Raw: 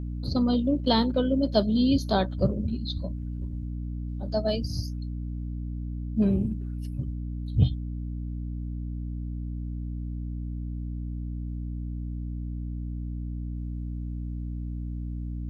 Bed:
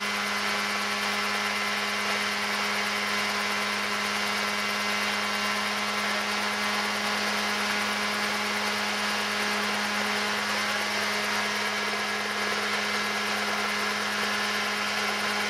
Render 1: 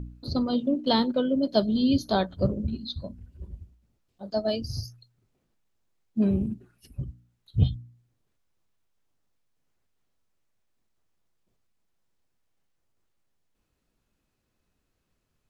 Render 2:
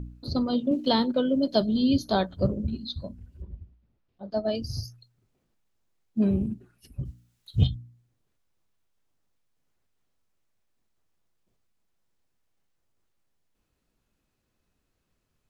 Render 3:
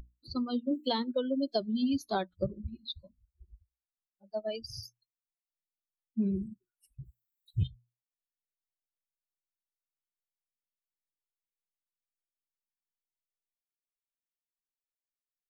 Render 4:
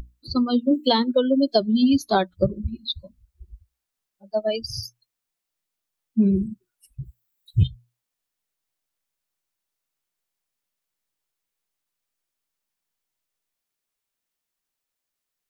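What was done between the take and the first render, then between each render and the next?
hum removal 60 Hz, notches 5
0:00.71–0:01.61: multiband upward and downward compressor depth 40%; 0:03.42–0:04.55: high-frequency loss of the air 200 metres; 0:07.05–0:07.67: high-shelf EQ 2,100 Hz +11 dB
spectral dynamics exaggerated over time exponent 2; downward compressor, threshold −26 dBFS, peak gain reduction 10.5 dB
level +11.5 dB

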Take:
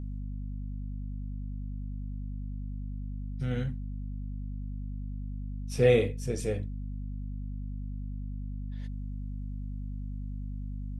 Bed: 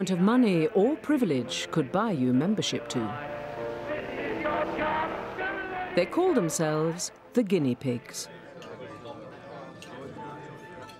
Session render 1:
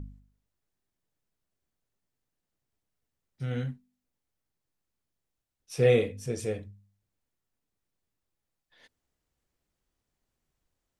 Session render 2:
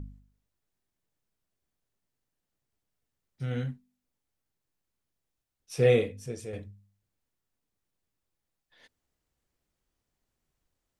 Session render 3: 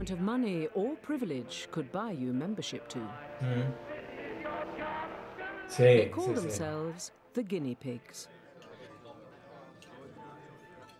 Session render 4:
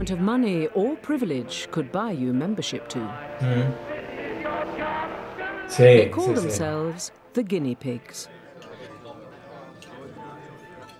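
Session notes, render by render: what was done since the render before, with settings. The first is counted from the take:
hum removal 50 Hz, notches 5
0:05.92–0:06.53: fade out, to −9 dB
mix in bed −9.5 dB
level +9.5 dB; brickwall limiter −2 dBFS, peak gain reduction 1.5 dB

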